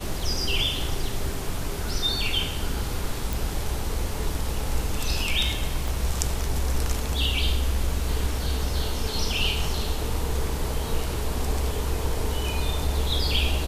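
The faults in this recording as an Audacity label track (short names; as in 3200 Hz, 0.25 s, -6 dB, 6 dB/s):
3.330000	3.330000	pop
5.880000	5.880000	pop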